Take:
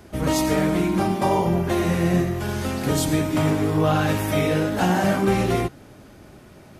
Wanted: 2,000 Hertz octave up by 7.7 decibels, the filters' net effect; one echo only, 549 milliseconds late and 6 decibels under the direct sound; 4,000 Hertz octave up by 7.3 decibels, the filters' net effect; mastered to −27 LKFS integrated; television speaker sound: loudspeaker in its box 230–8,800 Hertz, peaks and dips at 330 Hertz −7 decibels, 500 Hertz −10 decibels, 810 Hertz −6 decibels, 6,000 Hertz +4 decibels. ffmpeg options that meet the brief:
ffmpeg -i in.wav -af "highpass=frequency=230:width=0.5412,highpass=frequency=230:width=1.3066,equalizer=frequency=330:width_type=q:width=4:gain=-7,equalizer=frequency=500:width_type=q:width=4:gain=-10,equalizer=frequency=810:width_type=q:width=4:gain=-6,equalizer=frequency=6000:width_type=q:width=4:gain=4,lowpass=frequency=8800:width=0.5412,lowpass=frequency=8800:width=1.3066,equalizer=frequency=2000:width_type=o:gain=8.5,equalizer=frequency=4000:width_type=o:gain=6,aecho=1:1:549:0.501,volume=-4.5dB" out.wav

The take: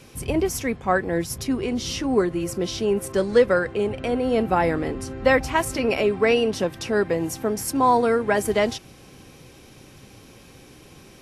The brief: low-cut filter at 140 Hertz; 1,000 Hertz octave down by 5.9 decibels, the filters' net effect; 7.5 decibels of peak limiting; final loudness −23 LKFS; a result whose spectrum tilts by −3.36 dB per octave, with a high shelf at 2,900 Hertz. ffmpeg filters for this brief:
ffmpeg -i in.wav -af "highpass=140,equalizer=frequency=1000:width_type=o:gain=-8.5,highshelf=frequency=2900:gain=6.5,volume=2dB,alimiter=limit=-12.5dB:level=0:latency=1" out.wav

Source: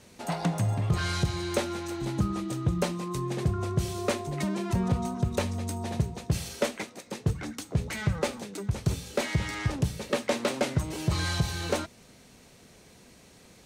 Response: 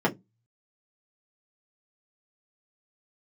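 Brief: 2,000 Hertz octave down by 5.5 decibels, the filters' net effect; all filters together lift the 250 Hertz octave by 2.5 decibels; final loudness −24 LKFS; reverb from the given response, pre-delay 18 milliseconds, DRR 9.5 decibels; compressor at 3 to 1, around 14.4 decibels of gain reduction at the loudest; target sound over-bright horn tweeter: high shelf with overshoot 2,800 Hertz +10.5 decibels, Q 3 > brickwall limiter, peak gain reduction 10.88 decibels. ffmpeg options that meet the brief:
-filter_complex "[0:a]equalizer=frequency=250:width_type=o:gain=4,equalizer=frequency=2000:width_type=o:gain=-3,acompressor=threshold=-40dB:ratio=3,asplit=2[link_01][link_02];[1:a]atrim=start_sample=2205,adelay=18[link_03];[link_02][link_03]afir=irnorm=-1:irlink=0,volume=-23dB[link_04];[link_01][link_04]amix=inputs=2:normalize=0,highshelf=frequency=2800:width_type=q:width=3:gain=10.5,volume=13dB,alimiter=limit=-13dB:level=0:latency=1"

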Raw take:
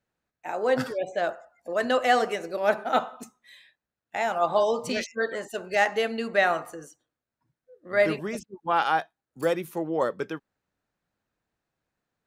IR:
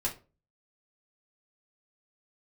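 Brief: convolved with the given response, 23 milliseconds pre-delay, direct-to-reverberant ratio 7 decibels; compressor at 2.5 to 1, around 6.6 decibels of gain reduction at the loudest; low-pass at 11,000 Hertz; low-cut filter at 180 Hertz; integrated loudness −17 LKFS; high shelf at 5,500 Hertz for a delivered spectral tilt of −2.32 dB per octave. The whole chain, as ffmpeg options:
-filter_complex "[0:a]highpass=180,lowpass=11000,highshelf=frequency=5500:gain=-8,acompressor=threshold=-27dB:ratio=2.5,asplit=2[link_01][link_02];[1:a]atrim=start_sample=2205,adelay=23[link_03];[link_02][link_03]afir=irnorm=-1:irlink=0,volume=-11.5dB[link_04];[link_01][link_04]amix=inputs=2:normalize=0,volume=14dB"

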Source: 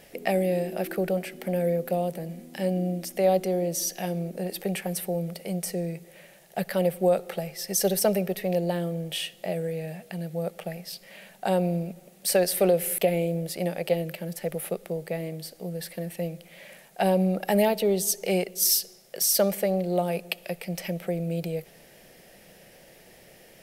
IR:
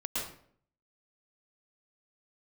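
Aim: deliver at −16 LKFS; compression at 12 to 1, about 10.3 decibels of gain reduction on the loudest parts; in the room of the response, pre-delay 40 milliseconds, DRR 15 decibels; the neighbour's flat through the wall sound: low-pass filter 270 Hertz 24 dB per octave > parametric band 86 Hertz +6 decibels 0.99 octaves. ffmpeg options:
-filter_complex "[0:a]acompressor=threshold=-27dB:ratio=12,asplit=2[link_01][link_02];[1:a]atrim=start_sample=2205,adelay=40[link_03];[link_02][link_03]afir=irnorm=-1:irlink=0,volume=-19.5dB[link_04];[link_01][link_04]amix=inputs=2:normalize=0,lowpass=frequency=270:width=0.5412,lowpass=frequency=270:width=1.3066,equalizer=frequency=86:width_type=o:width=0.99:gain=6,volume=21.5dB"

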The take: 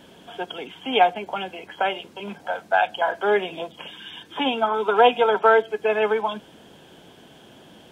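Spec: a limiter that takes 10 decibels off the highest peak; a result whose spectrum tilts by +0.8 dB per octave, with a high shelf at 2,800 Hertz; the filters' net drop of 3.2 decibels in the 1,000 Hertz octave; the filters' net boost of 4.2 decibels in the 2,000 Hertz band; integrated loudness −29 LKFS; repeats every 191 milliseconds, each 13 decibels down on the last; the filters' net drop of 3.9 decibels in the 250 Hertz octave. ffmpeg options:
ffmpeg -i in.wav -af "equalizer=frequency=250:width_type=o:gain=-4.5,equalizer=frequency=1000:width_type=o:gain=-7,equalizer=frequency=2000:width_type=o:gain=7,highshelf=frequency=2800:gain=4.5,alimiter=limit=-14dB:level=0:latency=1,aecho=1:1:191|382|573:0.224|0.0493|0.0108,volume=-3dB" out.wav

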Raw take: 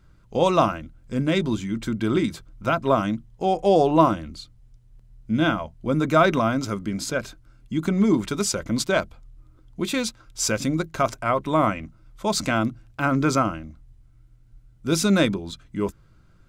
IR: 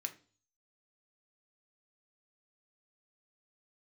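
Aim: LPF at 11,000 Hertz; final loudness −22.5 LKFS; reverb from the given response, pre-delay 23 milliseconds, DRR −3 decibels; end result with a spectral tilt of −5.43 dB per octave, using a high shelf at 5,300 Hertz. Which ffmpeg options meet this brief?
-filter_complex "[0:a]lowpass=11000,highshelf=frequency=5300:gain=-9,asplit=2[link_01][link_02];[1:a]atrim=start_sample=2205,adelay=23[link_03];[link_02][link_03]afir=irnorm=-1:irlink=0,volume=4.5dB[link_04];[link_01][link_04]amix=inputs=2:normalize=0,volume=-2dB"

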